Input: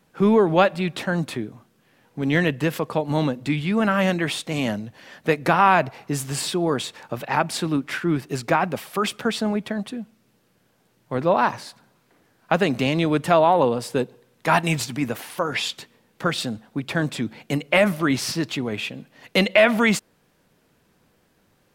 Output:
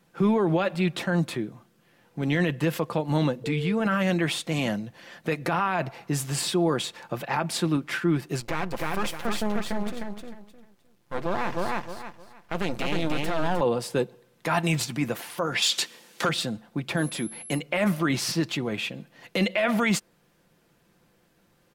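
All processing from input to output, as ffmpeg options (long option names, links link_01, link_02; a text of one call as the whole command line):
ffmpeg -i in.wav -filter_complex "[0:a]asettb=1/sr,asplit=3[link_01][link_02][link_03];[link_01]atrim=end=3.444[link_04];[link_02]atrim=start=3.44:end=3.86,asetpts=PTS-STARTPTS,afade=type=in:duration=0.004:curve=qsin,afade=type=out:start_time=0.416:duration=0.004:curve=qsin,acompressor=threshold=-23dB:ratio=2:attack=3.2:release=140:knee=1:detection=peak,aeval=exprs='val(0)+0.0447*sin(2*PI*450*n/s)':channel_layout=same[link_05];[link_03]atrim=start=3.856[link_06];[link_04][link_05]acrossfade=duration=0.004:curve1=hsin:curve2=qsin[link_07];[link_07][link_06]acrossfade=duration=0.004:curve1=qsin:curve2=hsin,asettb=1/sr,asplit=3[link_08][link_09][link_10];[link_08]atrim=end=8.404[link_11];[link_09]atrim=start=8.4:end=13.61,asetpts=PTS-STARTPTS,afade=type=in:duration=0.004:curve=qsin,afade=type=out:start_time=5.206:duration=0.004:curve=qsin,aeval=exprs='max(val(0),0)':channel_layout=same,aecho=1:1:307|614|921:0.631|0.158|0.0394,atrim=end_sample=229761[link_12];[link_10]atrim=start=13.606[link_13];[link_11][link_12]acrossfade=duration=0.004:curve1=hsin:curve2=qsin[link_14];[link_14][link_13]acrossfade=duration=0.004:curve1=qsin:curve2=hsin,asettb=1/sr,asplit=3[link_15][link_16][link_17];[link_15]atrim=end=15.624[link_18];[link_16]atrim=start=15.62:end=16.29,asetpts=PTS-STARTPTS,afade=type=in:duration=0.004:curve=qsin,afade=type=out:start_time=0.666:duration=0.004:curve=qsin,equalizer=frequency=6600:width_type=o:width=3:gain=12.5,acontrast=78,highpass=250[link_19];[link_17]atrim=start=16.286[link_20];[link_18][link_19]acrossfade=duration=0.004:curve1=hsin:curve2=qsin[link_21];[link_21][link_20]acrossfade=duration=0.004:curve1=qsin:curve2=hsin,asettb=1/sr,asplit=3[link_22][link_23][link_24];[link_22]atrim=end=16.974[link_25];[link_23]atrim=start=16.97:end=17.59,asetpts=PTS-STARTPTS,afade=type=in:duration=0.004:curve=qsin,afade=type=out:start_time=0.616:duration=0.004:curve=qsin,equalizer=frequency=89:width_type=o:width=1.4:gain=-8.5,aeval=exprs='val(0)+0.0178*sin(2*PI*11000*n/s)':channel_layout=same[link_26];[link_24]atrim=start=17.586[link_27];[link_25][link_26]acrossfade=duration=0.004:curve1=hsin:curve2=qsin[link_28];[link_28][link_27]acrossfade=duration=0.004:curve1=qsin:curve2=hsin,aecho=1:1:5.8:0.36,alimiter=limit=-12.5dB:level=0:latency=1:release=23,volume=-2dB" out.wav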